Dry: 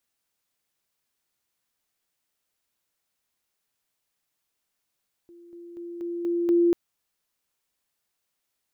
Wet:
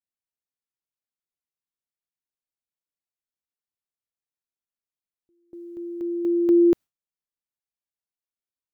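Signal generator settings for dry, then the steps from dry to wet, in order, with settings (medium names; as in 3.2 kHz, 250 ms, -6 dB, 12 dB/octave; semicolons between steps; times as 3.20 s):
level ladder 344 Hz -46.5 dBFS, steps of 6 dB, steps 6, 0.24 s 0.00 s
bass shelf 480 Hz +6.5 dB; gate with hold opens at -40 dBFS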